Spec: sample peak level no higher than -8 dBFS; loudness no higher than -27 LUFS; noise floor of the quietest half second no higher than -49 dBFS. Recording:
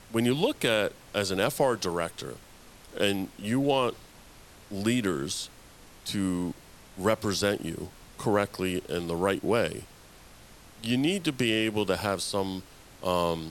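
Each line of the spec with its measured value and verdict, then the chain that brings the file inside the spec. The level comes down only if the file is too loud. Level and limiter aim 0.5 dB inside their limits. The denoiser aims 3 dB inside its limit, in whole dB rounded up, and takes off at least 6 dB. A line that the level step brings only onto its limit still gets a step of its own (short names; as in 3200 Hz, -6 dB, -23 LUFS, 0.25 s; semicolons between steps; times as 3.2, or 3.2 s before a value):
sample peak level -9.5 dBFS: OK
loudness -28.5 LUFS: OK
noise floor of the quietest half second -51 dBFS: OK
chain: none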